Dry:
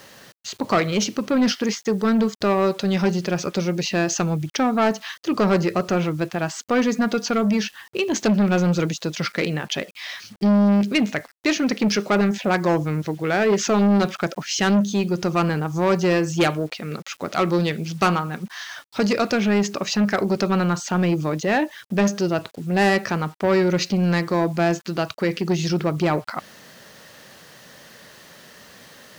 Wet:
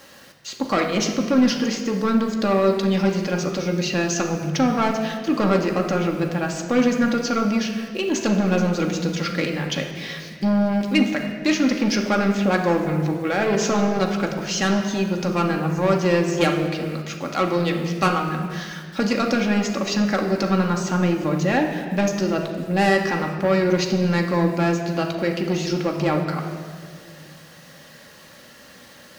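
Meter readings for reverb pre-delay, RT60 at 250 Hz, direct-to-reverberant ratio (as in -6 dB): 4 ms, 2.5 s, 1.0 dB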